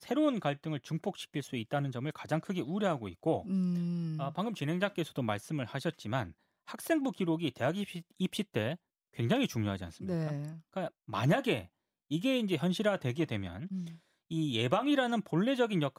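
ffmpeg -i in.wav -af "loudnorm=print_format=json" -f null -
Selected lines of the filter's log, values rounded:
"input_i" : "-33.4",
"input_tp" : "-15.5",
"input_lra" : "2.7",
"input_thresh" : "-43.7",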